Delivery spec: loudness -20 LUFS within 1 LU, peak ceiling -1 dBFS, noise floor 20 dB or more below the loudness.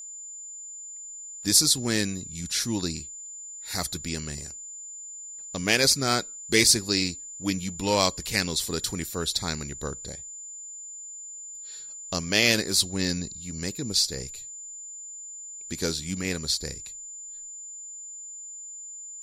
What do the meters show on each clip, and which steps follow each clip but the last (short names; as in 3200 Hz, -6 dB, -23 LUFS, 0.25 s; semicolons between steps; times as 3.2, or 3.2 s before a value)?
steady tone 7100 Hz; tone level -38 dBFS; loudness -25.5 LUFS; peak -6.5 dBFS; loudness target -20.0 LUFS
-> notch 7100 Hz, Q 30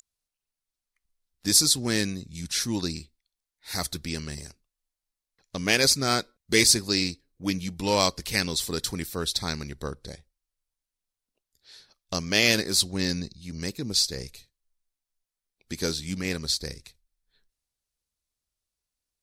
steady tone none; loudness -25.0 LUFS; peak -7.0 dBFS; loudness target -20.0 LUFS
-> gain +5 dB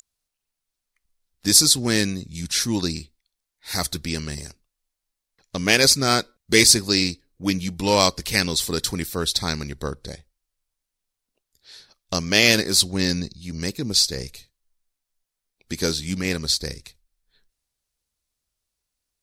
loudness -20.0 LUFS; peak -2.0 dBFS; noise floor -84 dBFS